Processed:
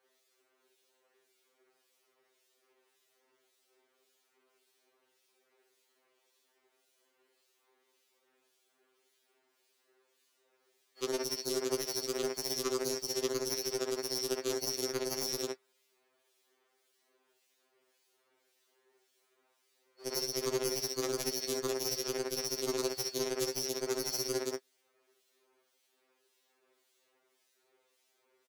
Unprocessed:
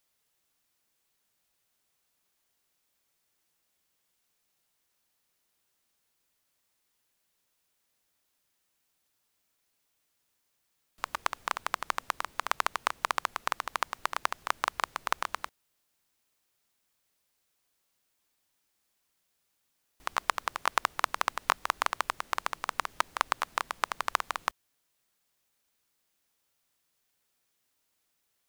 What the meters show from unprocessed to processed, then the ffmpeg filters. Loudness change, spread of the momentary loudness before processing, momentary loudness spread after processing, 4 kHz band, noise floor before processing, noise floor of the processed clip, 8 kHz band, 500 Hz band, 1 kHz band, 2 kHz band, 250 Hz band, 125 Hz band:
−1.5 dB, 5 LU, 3 LU, +2.5 dB, −77 dBFS, −76 dBFS, +6.5 dB, +10.5 dB, −16.5 dB, −13.0 dB, +13.5 dB, can't be measured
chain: -filter_complex "[0:a]afftfilt=real='real(if(lt(b,272),68*(eq(floor(b/68),0)*1+eq(floor(b/68),1)*2+eq(floor(b/68),2)*3+eq(floor(b/68),3)*0)+mod(b,68),b),0)':imag='imag(if(lt(b,272),68*(eq(floor(b/68),0)*1+eq(floor(b/68),1)*2+eq(floor(b/68),2)*3+eq(floor(b/68),3)*0)+mod(b,68),b),0)':win_size=2048:overlap=0.75,alimiter=limit=-13.5dB:level=0:latency=1:release=18,highpass=frequency=380:width_type=q:width=4.2,acrossover=split=2500[link_01][link_02];[link_01]aeval=exprs='val(0)*(1-0.7/2+0.7/2*cos(2*PI*1.8*n/s))':channel_layout=same[link_03];[link_02]aeval=exprs='val(0)*(1-0.7/2-0.7/2*cos(2*PI*1.8*n/s))':channel_layout=same[link_04];[link_03][link_04]amix=inputs=2:normalize=0,acontrast=48,lowpass=frequency=3800:poles=1,asplit=2[link_05][link_06];[link_06]aecho=0:1:35|63|78:0.133|0.531|0.15[link_07];[link_05][link_07]amix=inputs=2:normalize=0,aeval=exprs='0.0668*(abs(mod(val(0)/0.0668+3,4)-2)-1)':channel_layout=same,afftfilt=real='re*2.45*eq(mod(b,6),0)':imag='im*2.45*eq(mod(b,6),0)':win_size=2048:overlap=0.75,volume=5dB"

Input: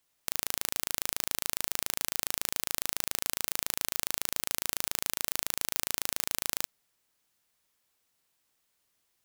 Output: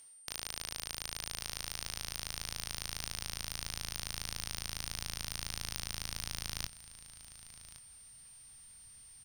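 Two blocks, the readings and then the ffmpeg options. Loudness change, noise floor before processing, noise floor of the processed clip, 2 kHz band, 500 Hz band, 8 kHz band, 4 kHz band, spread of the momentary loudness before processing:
−8.5 dB, −76 dBFS, −56 dBFS, −6.0 dB, −9.0 dB, −8.5 dB, −3.0 dB, 0 LU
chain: -filter_complex "[0:a]areverse,acompressor=threshold=-44dB:ratio=6,areverse,asplit=2[link_01][link_02];[link_02]adelay=23,volume=-7.5dB[link_03];[link_01][link_03]amix=inputs=2:normalize=0,aeval=exprs='val(0)+0.00224*sin(2*PI*8900*n/s)':channel_layout=same,highshelf=frequency=6800:width_type=q:width=3:gain=-7,aecho=1:1:1118:0.141,asubboost=boost=10:cutoff=120,volume=11dB"

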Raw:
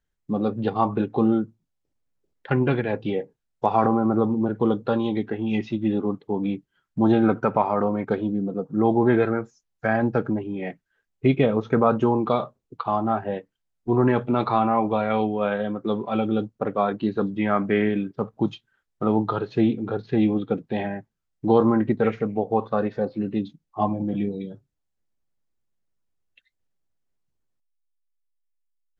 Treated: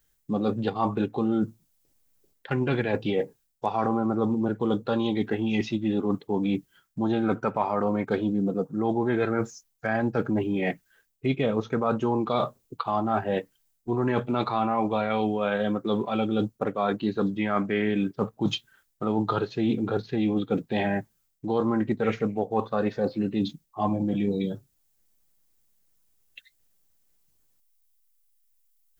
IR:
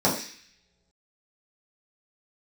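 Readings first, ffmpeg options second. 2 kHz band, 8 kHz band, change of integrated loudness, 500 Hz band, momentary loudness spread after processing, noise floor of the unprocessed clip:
−1.0 dB, can't be measured, −3.5 dB, −3.5 dB, 5 LU, −78 dBFS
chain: -af "aemphasis=mode=production:type=75kf,areverse,acompressor=threshold=-29dB:ratio=6,areverse,volume=6.5dB"

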